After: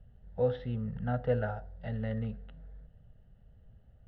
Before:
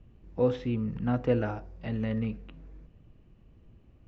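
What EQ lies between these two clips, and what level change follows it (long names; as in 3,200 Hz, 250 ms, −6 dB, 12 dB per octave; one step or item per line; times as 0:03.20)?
low-pass filter 3,000 Hz 12 dB per octave
phaser with its sweep stopped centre 1,600 Hz, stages 8
0.0 dB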